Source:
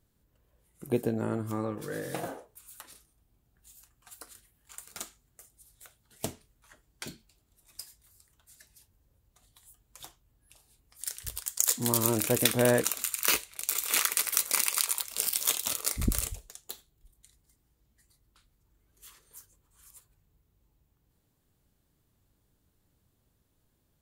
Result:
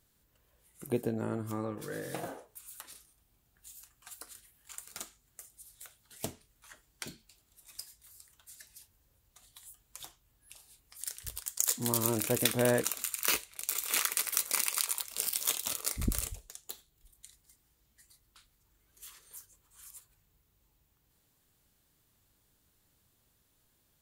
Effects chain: tape noise reduction on one side only encoder only; trim -3.5 dB

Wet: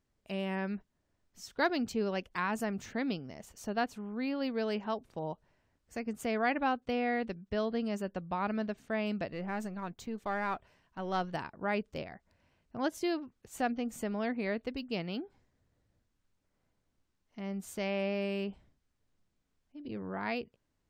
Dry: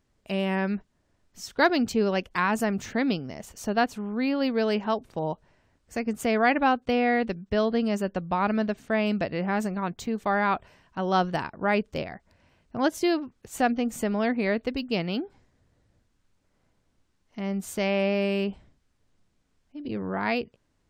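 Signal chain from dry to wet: 9.31–11.34 s: partial rectifier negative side -3 dB; trim -8.5 dB

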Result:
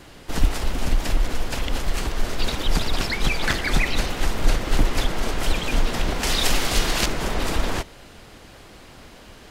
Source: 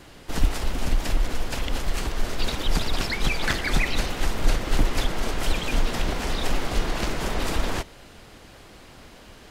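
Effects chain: 6.23–7.06 s: treble shelf 2.2 kHz +11 dB; trim +2 dB

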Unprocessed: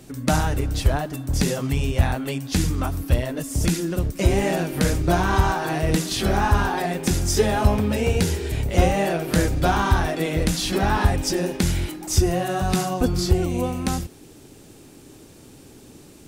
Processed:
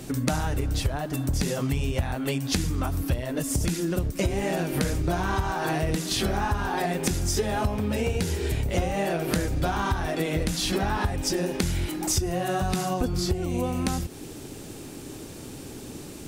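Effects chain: compression, threshold -30 dBFS, peak gain reduction 17.5 dB; trim +6.5 dB

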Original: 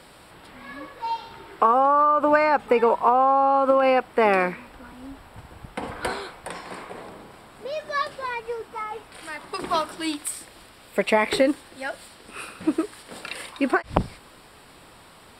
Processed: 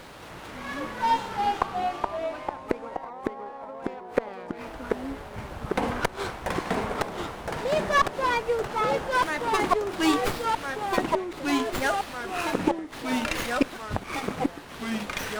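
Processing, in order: inverted gate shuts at -14 dBFS, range -28 dB; ever faster or slower copies 224 ms, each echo -2 st, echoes 3; sliding maximum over 5 samples; trim +5 dB

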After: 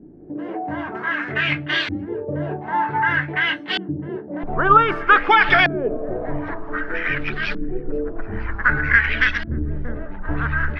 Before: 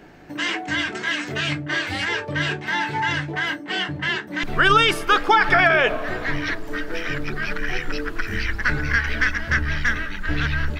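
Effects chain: LFO low-pass saw up 0.53 Hz 270–4100 Hz

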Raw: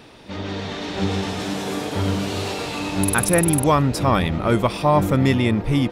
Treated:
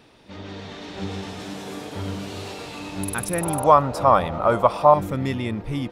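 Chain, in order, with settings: 3.41–4.94 s: high-order bell 830 Hz +13 dB; trim -8 dB

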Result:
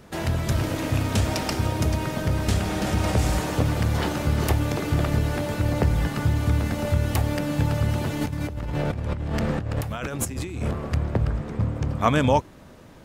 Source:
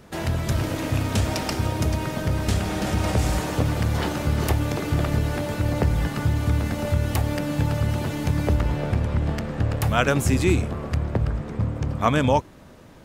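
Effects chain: 8.21–10.71 s: compressor with a negative ratio -28 dBFS, ratio -1

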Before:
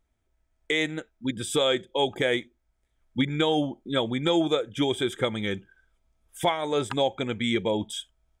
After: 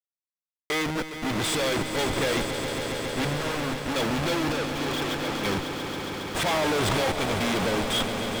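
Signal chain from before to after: Schmitt trigger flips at -41 dBFS; peak limiter -32 dBFS, peak gain reduction 10 dB; bass shelf 390 Hz -5 dB; 3.37–3.96 s: integer overflow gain 36.5 dB; treble shelf 7.9 kHz -12 dB; 4.52–5.45 s: power-law waveshaper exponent 3; echo with a slow build-up 137 ms, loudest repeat 5, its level -11 dB; 6.46–7.11 s: level flattener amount 100%; trim +9 dB

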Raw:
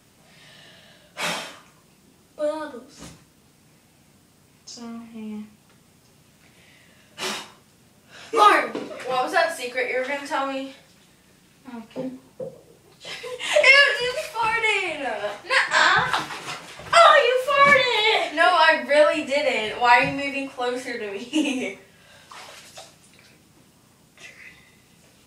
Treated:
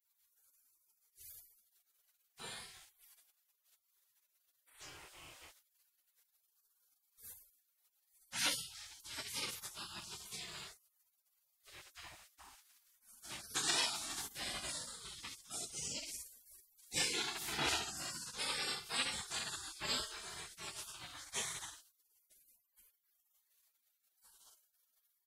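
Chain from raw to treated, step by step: on a send: early reflections 26 ms -8 dB, 40 ms -10.5 dB, 64 ms -5 dB; on the sum: spectral gate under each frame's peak -30 dB weak; trim -2 dB

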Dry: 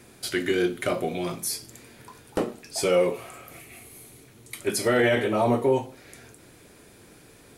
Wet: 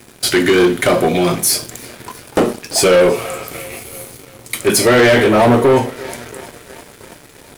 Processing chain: thinning echo 339 ms, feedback 77%, high-pass 280 Hz, level -23 dB; waveshaping leveller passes 3; trim +5 dB

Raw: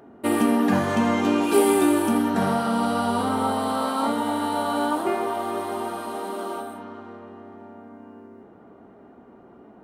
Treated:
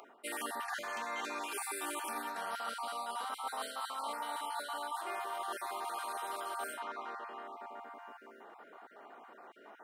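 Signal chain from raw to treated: random holes in the spectrogram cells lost 22%; high-pass 1 kHz 12 dB/octave; reverse; compression 12:1, threshold -43 dBFS, peak gain reduction 18 dB; reverse; trim +6.5 dB

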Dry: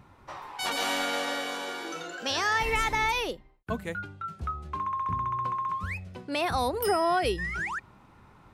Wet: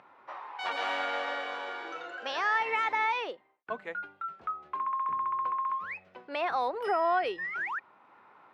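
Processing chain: upward compressor, threshold -47 dBFS; band-pass 540–2300 Hz

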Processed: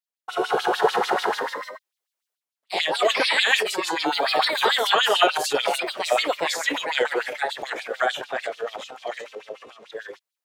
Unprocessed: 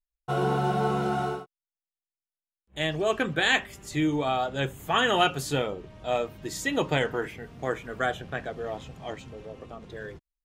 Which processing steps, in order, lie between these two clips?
ever faster or slower copies 253 ms, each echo +2 st, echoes 3; LFO high-pass sine 6.8 Hz 400–4200 Hz; transient shaper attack +2 dB, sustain +8 dB

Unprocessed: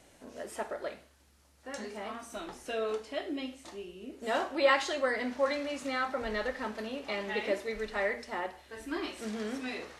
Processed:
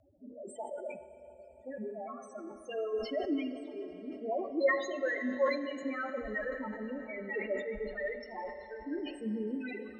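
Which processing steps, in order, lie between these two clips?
2.93–3.56 s: jump at every zero crossing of -37.5 dBFS; reverb removal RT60 1.7 s; dynamic bell 620 Hz, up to -4 dB, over -42 dBFS, Q 0.75; loudest bins only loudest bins 4; rotary cabinet horn 0.9 Hz; reverberation RT60 4.4 s, pre-delay 29 ms, DRR 7 dB; decay stretcher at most 83 dB/s; trim +5 dB

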